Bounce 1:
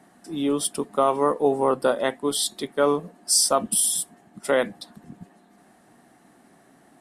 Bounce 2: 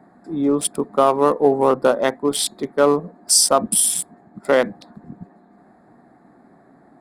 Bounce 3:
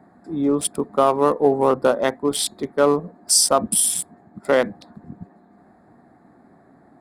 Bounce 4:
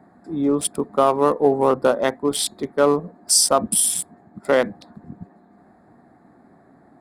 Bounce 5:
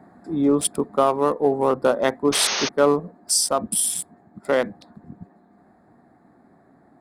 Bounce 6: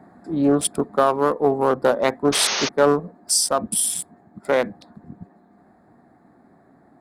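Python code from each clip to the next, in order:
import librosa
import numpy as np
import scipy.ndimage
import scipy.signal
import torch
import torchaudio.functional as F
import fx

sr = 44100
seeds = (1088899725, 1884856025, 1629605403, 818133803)

y1 = fx.wiener(x, sr, points=15)
y1 = y1 * 10.0 ** (5.5 / 20.0)
y2 = fx.peak_eq(y1, sr, hz=82.0, db=7.5, octaves=0.89)
y2 = y2 * 10.0 ** (-1.5 / 20.0)
y3 = y2
y4 = fx.rider(y3, sr, range_db=4, speed_s=0.5)
y4 = fx.spec_paint(y4, sr, seeds[0], shape='noise', start_s=2.32, length_s=0.37, low_hz=360.0, high_hz=6600.0, level_db=-23.0)
y4 = y4 * 10.0 ** (-1.5 / 20.0)
y5 = fx.doppler_dist(y4, sr, depth_ms=0.2)
y5 = y5 * 10.0 ** (1.0 / 20.0)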